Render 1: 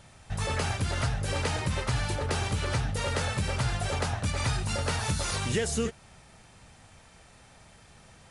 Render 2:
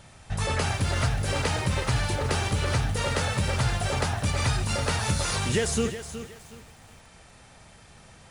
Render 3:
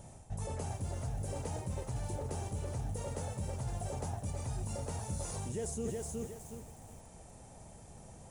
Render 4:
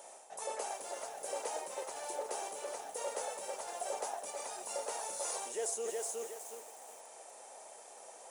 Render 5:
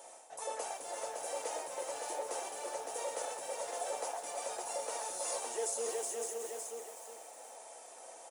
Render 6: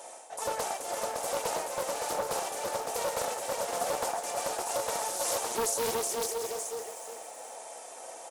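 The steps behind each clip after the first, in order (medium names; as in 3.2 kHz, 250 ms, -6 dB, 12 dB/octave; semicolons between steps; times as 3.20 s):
bit-crushed delay 368 ms, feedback 35%, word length 8-bit, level -11 dB; trim +3 dB
reverse; compression 10:1, threshold -34 dBFS, peak gain reduction 14 dB; reverse; high-order bell 2.4 kHz -14 dB 2.4 oct
high-pass 480 Hz 24 dB/octave; trim +5.5 dB
comb of notches 200 Hz; delay 561 ms -4.5 dB; trim +1 dB
loudspeaker Doppler distortion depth 0.46 ms; trim +7.5 dB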